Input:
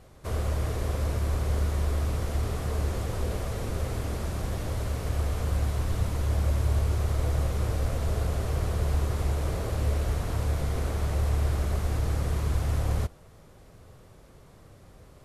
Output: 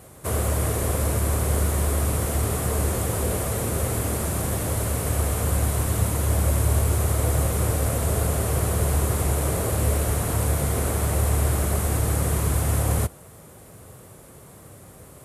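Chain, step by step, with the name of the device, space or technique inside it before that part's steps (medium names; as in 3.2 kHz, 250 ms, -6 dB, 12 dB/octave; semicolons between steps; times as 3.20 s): budget condenser microphone (high-pass 83 Hz; resonant high shelf 6.9 kHz +9.5 dB, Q 1.5); trim +7.5 dB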